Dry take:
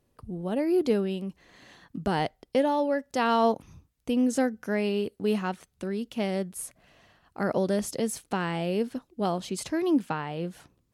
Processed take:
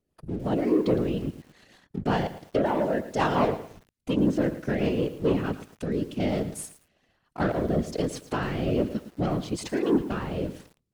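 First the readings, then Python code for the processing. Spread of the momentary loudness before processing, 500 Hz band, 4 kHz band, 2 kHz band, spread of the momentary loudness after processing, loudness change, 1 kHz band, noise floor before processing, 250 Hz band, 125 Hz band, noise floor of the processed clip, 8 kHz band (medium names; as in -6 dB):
11 LU, +0.5 dB, -1.5 dB, 0.0 dB, 12 LU, +1.0 dB, -1.0 dB, -72 dBFS, +1.5 dB, +6.0 dB, -76 dBFS, -3.5 dB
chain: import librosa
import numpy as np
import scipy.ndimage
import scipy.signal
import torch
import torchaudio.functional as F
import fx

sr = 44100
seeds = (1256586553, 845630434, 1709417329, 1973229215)

y = fx.env_lowpass_down(x, sr, base_hz=2500.0, full_db=-21.0)
y = fx.leveller(y, sr, passes=2)
y = fx.rotary_switch(y, sr, hz=5.5, then_hz=1.2, switch_at_s=4.84)
y = fx.whisperise(y, sr, seeds[0])
y = fx.echo_crushed(y, sr, ms=111, feedback_pct=35, bits=7, wet_db=-13)
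y = F.gain(torch.from_numpy(y), -2.5).numpy()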